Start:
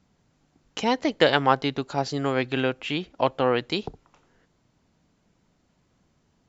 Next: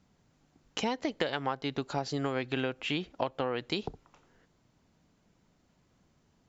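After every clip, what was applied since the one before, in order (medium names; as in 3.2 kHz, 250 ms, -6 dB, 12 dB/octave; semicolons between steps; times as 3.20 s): compression 16:1, threshold -25 dBFS, peak gain reduction 13 dB; trim -2 dB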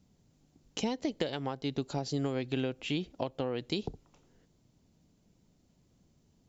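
peaking EQ 1.4 kHz -12 dB 2.2 oct; trim +2.5 dB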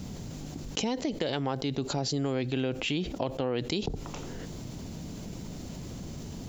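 level flattener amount 70%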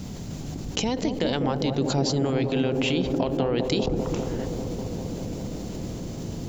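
feedback echo behind a low-pass 198 ms, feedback 84%, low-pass 720 Hz, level -4.5 dB; trim +4 dB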